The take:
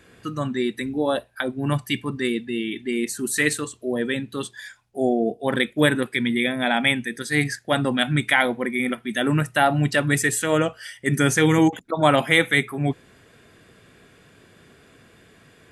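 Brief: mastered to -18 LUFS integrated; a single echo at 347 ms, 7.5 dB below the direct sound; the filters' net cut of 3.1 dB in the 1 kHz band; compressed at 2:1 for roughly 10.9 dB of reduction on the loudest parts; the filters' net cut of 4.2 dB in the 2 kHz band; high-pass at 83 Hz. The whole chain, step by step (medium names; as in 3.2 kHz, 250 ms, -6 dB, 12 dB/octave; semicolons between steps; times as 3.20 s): high-pass 83 Hz; peaking EQ 1 kHz -3.5 dB; peaking EQ 2 kHz -4 dB; compression 2:1, threshold -34 dBFS; delay 347 ms -7.5 dB; trim +13.5 dB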